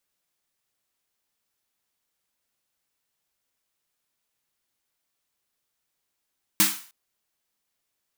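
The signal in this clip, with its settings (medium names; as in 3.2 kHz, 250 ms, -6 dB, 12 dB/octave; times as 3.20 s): snare drum length 0.31 s, tones 200 Hz, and 310 Hz, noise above 930 Hz, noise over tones 9.5 dB, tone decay 0.28 s, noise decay 0.44 s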